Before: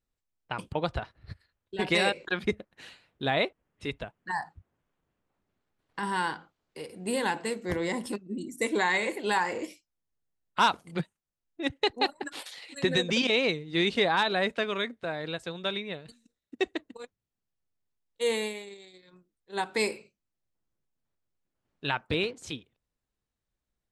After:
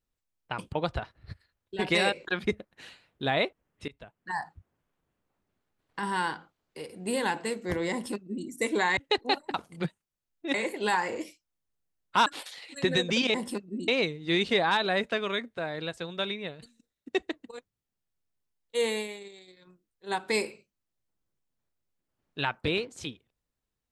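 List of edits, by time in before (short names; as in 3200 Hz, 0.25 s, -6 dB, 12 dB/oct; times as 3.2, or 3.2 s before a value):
3.88–4.41 fade in, from -23.5 dB
7.92–8.46 copy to 13.34
8.97–10.69 swap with 11.69–12.26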